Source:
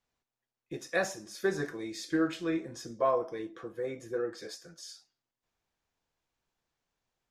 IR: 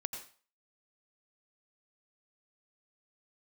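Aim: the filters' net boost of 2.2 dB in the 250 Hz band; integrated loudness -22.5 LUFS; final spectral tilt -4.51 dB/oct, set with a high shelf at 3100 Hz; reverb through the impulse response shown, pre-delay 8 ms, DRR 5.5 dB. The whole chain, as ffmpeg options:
-filter_complex "[0:a]equalizer=f=250:t=o:g=3.5,highshelf=f=3.1k:g=-3.5,asplit=2[a][b];[1:a]atrim=start_sample=2205,adelay=8[c];[b][c]afir=irnorm=-1:irlink=0,volume=-5.5dB[d];[a][d]amix=inputs=2:normalize=0,volume=10dB"

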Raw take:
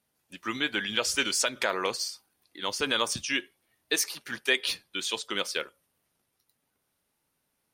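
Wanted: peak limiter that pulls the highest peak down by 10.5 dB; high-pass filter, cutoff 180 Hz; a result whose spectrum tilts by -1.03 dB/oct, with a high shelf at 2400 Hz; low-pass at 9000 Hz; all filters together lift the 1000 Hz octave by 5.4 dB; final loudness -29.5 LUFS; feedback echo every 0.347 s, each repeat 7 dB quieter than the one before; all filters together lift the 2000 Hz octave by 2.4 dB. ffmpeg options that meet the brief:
-af "highpass=180,lowpass=9k,equalizer=f=1k:t=o:g=7,equalizer=f=2k:t=o:g=4.5,highshelf=f=2.4k:g=-7.5,alimiter=limit=-20dB:level=0:latency=1,aecho=1:1:347|694|1041|1388|1735:0.447|0.201|0.0905|0.0407|0.0183,volume=4dB"

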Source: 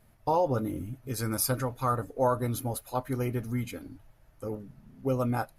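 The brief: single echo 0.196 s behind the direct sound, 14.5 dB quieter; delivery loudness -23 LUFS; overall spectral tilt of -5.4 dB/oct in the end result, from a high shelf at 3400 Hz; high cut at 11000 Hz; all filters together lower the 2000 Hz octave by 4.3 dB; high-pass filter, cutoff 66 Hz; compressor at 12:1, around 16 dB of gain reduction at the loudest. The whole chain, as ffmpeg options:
-af "highpass=66,lowpass=11k,equalizer=f=2k:t=o:g=-8.5,highshelf=f=3.4k:g=7,acompressor=threshold=-37dB:ratio=12,aecho=1:1:196:0.188,volume=19dB"

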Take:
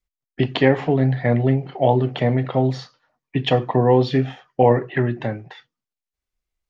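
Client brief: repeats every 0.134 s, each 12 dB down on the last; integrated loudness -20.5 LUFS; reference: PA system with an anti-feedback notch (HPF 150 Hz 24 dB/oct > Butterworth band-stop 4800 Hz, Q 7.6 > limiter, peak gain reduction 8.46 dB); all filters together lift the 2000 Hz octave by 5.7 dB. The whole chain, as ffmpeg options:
-af "highpass=f=150:w=0.5412,highpass=f=150:w=1.3066,asuperstop=centerf=4800:order=8:qfactor=7.6,equalizer=f=2k:t=o:g=6.5,aecho=1:1:134|268|402:0.251|0.0628|0.0157,volume=1.5dB,alimiter=limit=-8dB:level=0:latency=1"

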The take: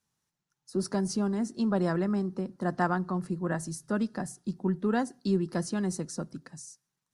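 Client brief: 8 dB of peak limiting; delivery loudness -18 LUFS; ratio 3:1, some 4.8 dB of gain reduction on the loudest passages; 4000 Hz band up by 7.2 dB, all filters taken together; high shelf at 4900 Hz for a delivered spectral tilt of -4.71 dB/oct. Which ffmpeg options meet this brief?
-af "equalizer=f=4k:t=o:g=5.5,highshelf=f=4.9k:g=6.5,acompressor=threshold=-29dB:ratio=3,volume=18dB,alimiter=limit=-8dB:level=0:latency=1"

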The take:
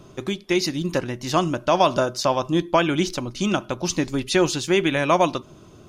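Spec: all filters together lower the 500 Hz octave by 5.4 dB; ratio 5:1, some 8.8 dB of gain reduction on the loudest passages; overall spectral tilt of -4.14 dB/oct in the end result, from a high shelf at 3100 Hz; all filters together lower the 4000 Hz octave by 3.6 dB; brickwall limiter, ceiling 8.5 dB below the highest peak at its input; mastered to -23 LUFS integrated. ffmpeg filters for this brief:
-af "equalizer=f=500:t=o:g=-8,highshelf=f=3.1k:g=5,equalizer=f=4k:t=o:g=-8.5,acompressor=threshold=-26dB:ratio=5,volume=10.5dB,alimiter=limit=-11.5dB:level=0:latency=1"

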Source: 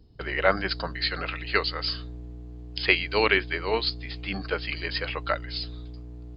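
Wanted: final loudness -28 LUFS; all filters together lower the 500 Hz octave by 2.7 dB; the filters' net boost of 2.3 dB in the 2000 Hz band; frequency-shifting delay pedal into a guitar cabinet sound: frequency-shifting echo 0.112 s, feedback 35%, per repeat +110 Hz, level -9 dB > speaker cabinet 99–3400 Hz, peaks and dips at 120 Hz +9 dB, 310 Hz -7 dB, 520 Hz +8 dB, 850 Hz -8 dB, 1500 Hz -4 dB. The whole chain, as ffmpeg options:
-filter_complex "[0:a]equalizer=f=500:t=o:g=-6.5,equalizer=f=2k:t=o:g=4.5,asplit=5[a][b][c][d][e];[b]adelay=112,afreqshift=110,volume=-9dB[f];[c]adelay=224,afreqshift=220,volume=-18.1dB[g];[d]adelay=336,afreqshift=330,volume=-27.2dB[h];[e]adelay=448,afreqshift=440,volume=-36.4dB[i];[a][f][g][h][i]amix=inputs=5:normalize=0,highpass=99,equalizer=f=120:t=q:w=4:g=9,equalizer=f=310:t=q:w=4:g=-7,equalizer=f=520:t=q:w=4:g=8,equalizer=f=850:t=q:w=4:g=-8,equalizer=f=1.5k:t=q:w=4:g=-4,lowpass=f=3.4k:w=0.5412,lowpass=f=3.4k:w=1.3066,volume=-2dB"

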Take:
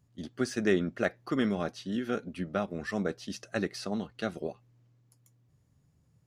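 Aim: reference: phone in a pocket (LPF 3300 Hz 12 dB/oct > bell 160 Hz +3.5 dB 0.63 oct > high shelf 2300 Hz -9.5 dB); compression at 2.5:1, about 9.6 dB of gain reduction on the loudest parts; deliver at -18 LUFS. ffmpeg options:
-af "acompressor=threshold=-36dB:ratio=2.5,lowpass=3.3k,equalizer=f=160:t=o:w=0.63:g=3.5,highshelf=f=2.3k:g=-9.5,volume=21.5dB"

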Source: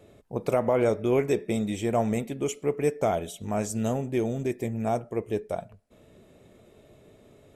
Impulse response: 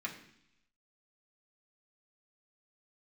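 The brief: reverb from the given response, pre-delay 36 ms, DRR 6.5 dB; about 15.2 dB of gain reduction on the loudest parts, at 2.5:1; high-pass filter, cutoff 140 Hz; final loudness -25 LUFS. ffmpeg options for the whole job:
-filter_complex "[0:a]highpass=140,acompressor=threshold=-43dB:ratio=2.5,asplit=2[a][b];[1:a]atrim=start_sample=2205,adelay=36[c];[b][c]afir=irnorm=-1:irlink=0,volume=-8.5dB[d];[a][d]amix=inputs=2:normalize=0,volume=16dB"

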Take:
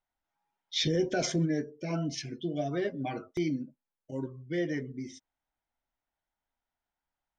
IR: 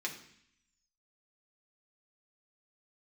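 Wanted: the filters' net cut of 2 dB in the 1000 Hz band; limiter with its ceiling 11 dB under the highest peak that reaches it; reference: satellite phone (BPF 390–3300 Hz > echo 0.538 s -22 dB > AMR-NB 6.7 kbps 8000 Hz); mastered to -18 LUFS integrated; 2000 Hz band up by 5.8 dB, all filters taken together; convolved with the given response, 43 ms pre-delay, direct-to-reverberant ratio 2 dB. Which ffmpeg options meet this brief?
-filter_complex "[0:a]equalizer=f=1k:t=o:g=-5,equalizer=f=2k:t=o:g=9,alimiter=level_in=2.5dB:limit=-24dB:level=0:latency=1,volume=-2.5dB,asplit=2[a][b];[1:a]atrim=start_sample=2205,adelay=43[c];[b][c]afir=irnorm=-1:irlink=0,volume=-4.5dB[d];[a][d]amix=inputs=2:normalize=0,highpass=390,lowpass=3.3k,aecho=1:1:538:0.0794,volume=22dB" -ar 8000 -c:a libopencore_amrnb -b:a 6700

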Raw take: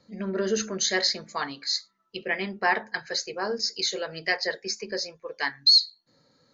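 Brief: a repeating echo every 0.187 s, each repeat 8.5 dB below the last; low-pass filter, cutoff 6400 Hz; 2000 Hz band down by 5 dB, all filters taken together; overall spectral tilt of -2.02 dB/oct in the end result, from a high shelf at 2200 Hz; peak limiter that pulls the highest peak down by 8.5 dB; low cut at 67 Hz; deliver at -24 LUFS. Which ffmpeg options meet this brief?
-af "highpass=67,lowpass=6.4k,equalizer=f=2k:t=o:g=-7.5,highshelf=f=2.2k:g=3.5,alimiter=limit=-17dB:level=0:latency=1,aecho=1:1:187|374|561|748:0.376|0.143|0.0543|0.0206,volume=4.5dB"

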